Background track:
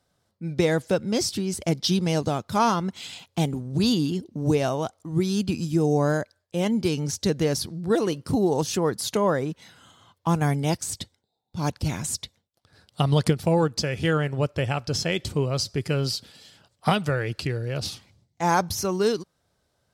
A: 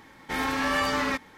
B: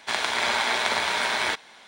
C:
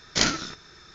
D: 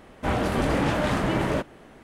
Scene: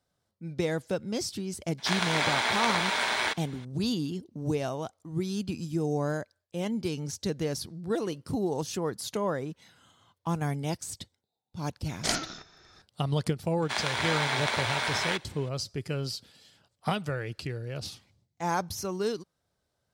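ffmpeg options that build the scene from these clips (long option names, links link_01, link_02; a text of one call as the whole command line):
ffmpeg -i bed.wav -i cue0.wav -i cue1.wav -i cue2.wav -filter_complex "[2:a]asplit=2[link_01][link_02];[0:a]volume=-7.5dB[link_03];[3:a]equalizer=frequency=720:width=3.3:gain=9.5[link_04];[link_01]atrim=end=1.87,asetpts=PTS-STARTPTS,volume=-3dB,afade=type=in:duration=0.004:curve=hsin,afade=type=out:start_time=1.866:duration=0.004:curve=hsin,adelay=1780[link_05];[link_04]atrim=end=0.94,asetpts=PTS-STARTPTS,volume=-7.5dB,afade=type=in:duration=0.004:curve=hsin,afade=type=out:start_time=0.936:duration=0.004:curve=hsin,adelay=11880[link_06];[link_02]atrim=end=1.87,asetpts=PTS-STARTPTS,volume=-5dB,afade=type=in:duration=0.004:curve=hsin,afade=type=out:start_time=1.866:duration=0.004:curve=hsin,adelay=13620[link_07];[link_03][link_05][link_06][link_07]amix=inputs=4:normalize=0" out.wav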